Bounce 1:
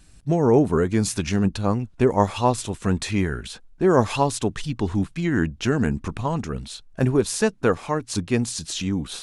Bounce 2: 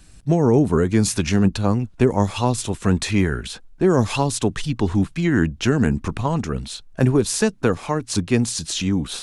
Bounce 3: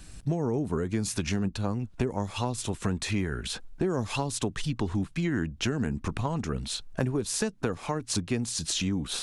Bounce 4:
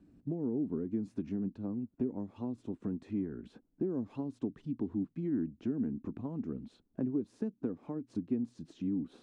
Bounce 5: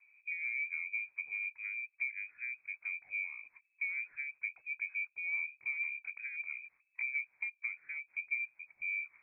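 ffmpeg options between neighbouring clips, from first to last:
-filter_complex "[0:a]acrossover=split=310|3000[s0][s1][s2];[s1]acompressor=threshold=0.0708:ratio=6[s3];[s0][s3][s2]amix=inputs=3:normalize=0,volume=1.58"
-af "acompressor=threshold=0.0355:ratio=4,volume=1.19"
-af "bandpass=f=270:t=q:w=2.9:csg=0"
-af "lowpass=f=2200:t=q:w=0.5098,lowpass=f=2200:t=q:w=0.6013,lowpass=f=2200:t=q:w=0.9,lowpass=f=2200:t=q:w=2.563,afreqshift=-2600,volume=0.631"

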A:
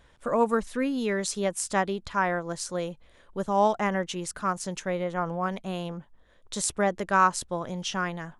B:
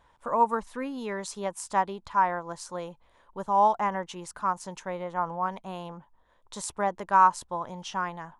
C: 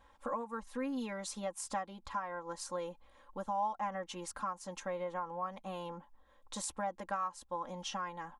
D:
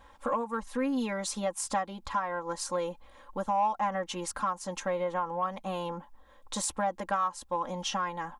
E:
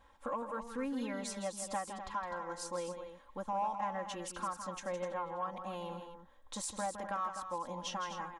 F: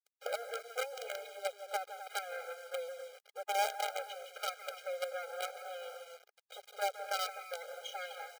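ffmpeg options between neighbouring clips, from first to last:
-af "equalizer=f=940:w=2:g=14,volume=0.422"
-af "acompressor=threshold=0.0158:ratio=3,aecho=1:1:3.7:0.89,volume=0.668"
-af "asoftclip=type=tanh:threshold=0.0596,volume=2.51"
-af "aecho=1:1:162|252:0.355|0.316,volume=0.398"
-af "aresample=8000,aresample=44100,acrusher=bits=6:dc=4:mix=0:aa=0.000001,afftfilt=real='re*eq(mod(floor(b*sr/1024/410),2),1)':imag='im*eq(mod(floor(b*sr/1024/410),2),1)':win_size=1024:overlap=0.75,volume=1.78"

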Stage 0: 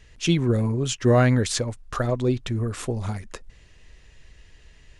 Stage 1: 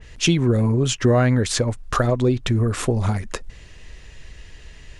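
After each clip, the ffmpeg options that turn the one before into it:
-af "acompressor=threshold=0.0562:ratio=3,adynamicequalizer=threshold=0.00447:dfrequency=2500:dqfactor=0.7:tfrequency=2500:tqfactor=0.7:attack=5:release=100:ratio=0.375:range=2:mode=cutabove:tftype=highshelf,volume=2.82"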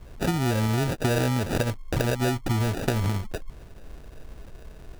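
-af "acompressor=threshold=0.112:ratio=6,acrusher=samples=41:mix=1:aa=0.000001,volume=0.841"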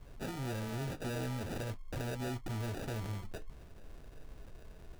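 -af "asoftclip=type=tanh:threshold=0.0422,flanger=delay=7:depth=9:regen=-64:speed=0.47:shape=sinusoidal,volume=0.668"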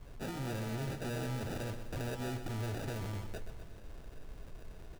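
-af "asoftclip=type=tanh:threshold=0.0158,aecho=1:1:126|252|378|504|630|756|882:0.316|0.183|0.106|0.0617|0.0358|0.0208|0.012,volume=1.26"

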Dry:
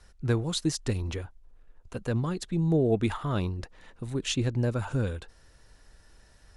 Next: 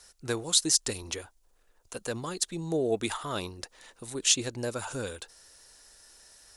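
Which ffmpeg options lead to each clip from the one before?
-af "bass=f=250:g=-14,treble=f=4000:g=14"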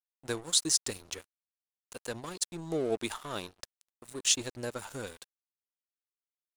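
-af "aeval=exprs='sgn(val(0))*max(abs(val(0))-0.00841,0)':c=same,volume=0.794"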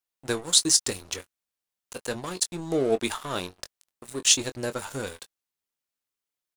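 -filter_complex "[0:a]asplit=2[s0][s1];[s1]adelay=22,volume=0.266[s2];[s0][s2]amix=inputs=2:normalize=0,volume=2.11"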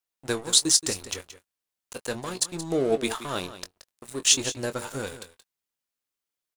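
-af "aecho=1:1:176:0.211"

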